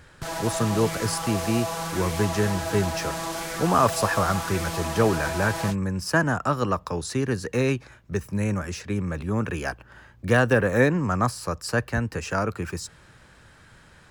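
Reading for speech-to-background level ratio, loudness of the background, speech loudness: 5.0 dB, −30.5 LKFS, −25.5 LKFS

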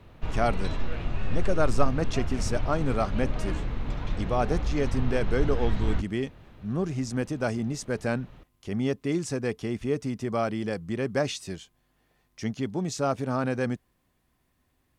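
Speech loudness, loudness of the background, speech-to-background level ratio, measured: −30.0 LKFS, −33.5 LKFS, 3.5 dB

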